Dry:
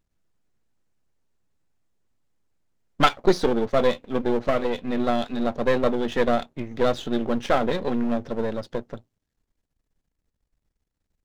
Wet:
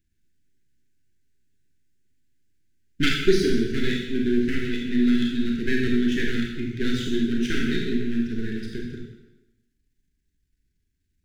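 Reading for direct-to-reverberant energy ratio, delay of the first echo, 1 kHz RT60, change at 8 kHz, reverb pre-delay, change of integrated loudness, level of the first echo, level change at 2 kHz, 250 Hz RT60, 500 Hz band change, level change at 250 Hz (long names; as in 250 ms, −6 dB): −1.0 dB, no echo audible, 0.95 s, can't be measured, 23 ms, −0.5 dB, no echo audible, +2.5 dB, 1.0 s, −5.0 dB, +4.0 dB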